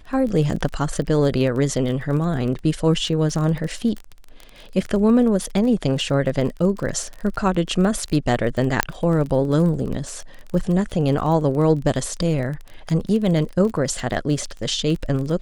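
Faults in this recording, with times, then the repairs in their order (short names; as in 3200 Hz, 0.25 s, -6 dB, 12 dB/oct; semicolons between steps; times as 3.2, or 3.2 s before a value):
crackle 25/s -27 dBFS
8.83 pop -2 dBFS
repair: de-click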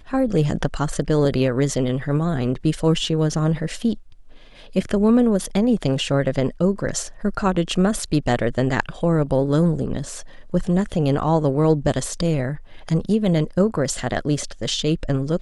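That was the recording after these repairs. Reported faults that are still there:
none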